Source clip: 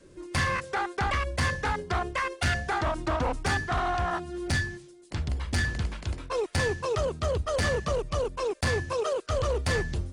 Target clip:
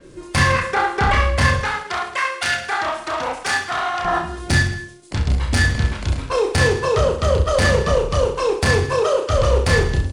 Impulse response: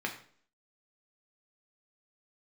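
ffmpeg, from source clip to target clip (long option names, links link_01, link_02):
-filter_complex "[0:a]asettb=1/sr,asplit=3[link_01][link_02][link_03];[link_01]atrim=end=1.634[link_04];[link_02]atrim=start=1.63:end=4.05,asetpts=PTS-STARTPTS,afade=type=in:duration=0.004:curve=qsin,afade=type=out:start_time=2.416:duration=0.004:curve=qsin,highpass=frequency=1200:poles=1[link_05];[link_03]atrim=start=4.046[link_06];[link_04][link_05]acrossfade=duration=0.004:curve1=hsin:curve2=qsin[link_07];[link_07][link_06]acrossfade=duration=0.004:curve1=qsin:curve2=hsin,aecho=1:1:30|66|109.2|161|223.2:0.631|0.398|0.251|0.158|0.1,adynamicequalizer=threshold=0.00708:dfrequency=5100:dqfactor=0.7:tfrequency=5100:tqfactor=0.7:attack=5:release=100:ratio=0.375:range=2:mode=cutabove:tftype=highshelf,volume=8.5dB"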